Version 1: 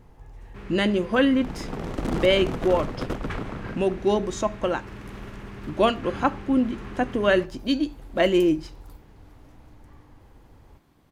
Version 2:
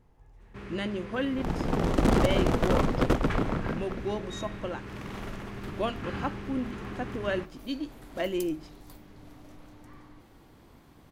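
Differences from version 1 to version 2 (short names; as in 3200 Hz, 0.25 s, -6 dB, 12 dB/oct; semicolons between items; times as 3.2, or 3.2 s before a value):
speech -10.5 dB; second sound +5.5 dB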